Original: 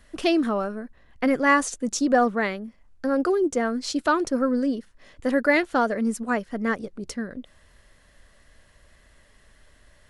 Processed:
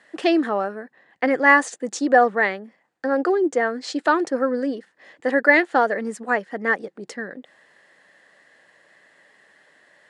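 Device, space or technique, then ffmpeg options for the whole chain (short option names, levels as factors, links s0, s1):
television speaker: -filter_complex "[0:a]asettb=1/sr,asplit=3[s0][s1][s2];[s0]atrim=end=3.254[s3];[s1]atrim=start=3.25:end=4.05,asetpts=PTS-STARTPTS,afade=t=in:d=0.004:c=qsin,afade=t=out:st=0.796:d=0.004:c=qsin,lowpass=9500[s4];[s2]atrim=start=4.046[s5];[s3][s4]acrossfade=d=0.004:c1=hsin:c2=qsin[s6];[s6][s5]acrossfade=d=0.004:c1=qsin:c2=hsin,highpass=f=180:w=0.5412,highpass=f=180:w=1.3066,equalizer=f=230:t=q:w=4:g=-6,equalizer=f=330:t=q:w=4:g=3,equalizer=f=490:t=q:w=4:g=4,equalizer=f=800:t=q:w=4:g=8,equalizer=f=1800:t=q:w=4:g=10,equalizer=f=5800:t=q:w=4:g=-5,lowpass=f=8500:w=0.5412,lowpass=f=8500:w=1.3066"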